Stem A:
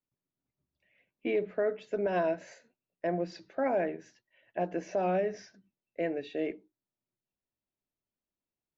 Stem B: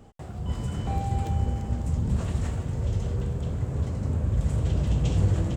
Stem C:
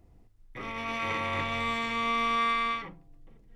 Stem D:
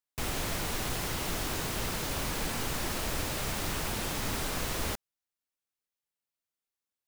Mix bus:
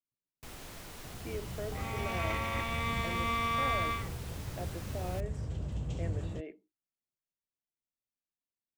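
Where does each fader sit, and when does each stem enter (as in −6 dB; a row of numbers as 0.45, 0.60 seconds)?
−11.5, −12.5, −4.5, −14.0 decibels; 0.00, 0.85, 1.20, 0.25 seconds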